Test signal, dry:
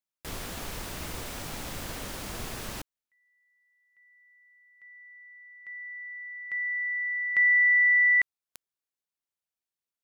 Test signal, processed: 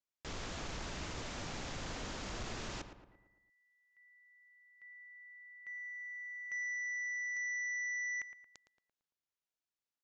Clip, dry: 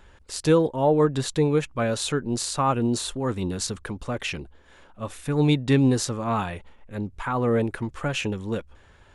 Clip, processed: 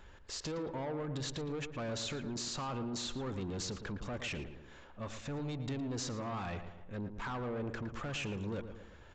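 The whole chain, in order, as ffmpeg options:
-filter_complex "[0:a]acompressor=threshold=-29dB:ratio=8:attack=7.1:release=34,aresample=16000,asoftclip=type=tanh:threshold=-31.5dB,aresample=44100,asplit=2[a][b];[b]adelay=113,lowpass=f=2.2k:p=1,volume=-9dB,asplit=2[c][d];[d]adelay=113,lowpass=f=2.2k:p=1,volume=0.51,asplit=2[e][f];[f]adelay=113,lowpass=f=2.2k:p=1,volume=0.51,asplit=2[g][h];[h]adelay=113,lowpass=f=2.2k:p=1,volume=0.51,asplit=2[i][j];[j]adelay=113,lowpass=f=2.2k:p=1,volume=0.51,asplit=2[k][l];[l]adelay=113,lowpass=f=2.2k:p=1,volume=0.51[m];[a][c][e][g][i][k][m]amix=inputs=7:normalize=0,volume=-3.5dB"

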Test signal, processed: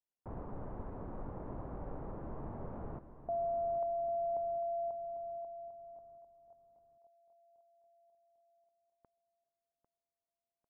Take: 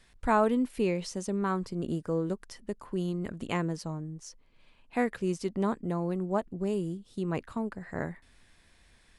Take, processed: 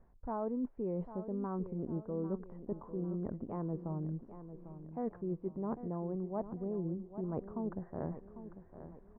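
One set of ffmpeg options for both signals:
-af "lowpass=f=1k:w=0.5412,lowpass=f=1k:w=1.3066,areverse,acompressor=threshold=-36dB:ratio=6,areverse,aecho=1:1:798|1596|2394|3192|3990:0.251|0.113|0.0509|0.0229|0.0103,volume=1.5dB"

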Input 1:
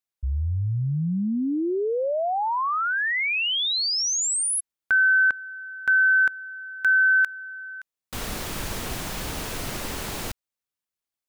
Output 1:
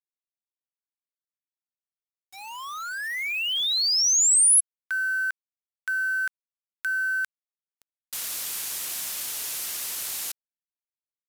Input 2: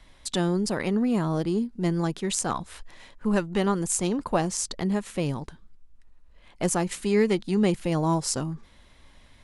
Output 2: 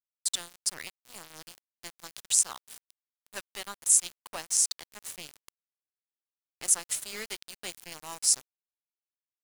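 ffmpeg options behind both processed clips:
-af "aderivative,aresample=32000,aresample=44100,aeval=exprs='val(0)*gte(abs(val(0)),0.00891)':c=same,volume=5.5dB"

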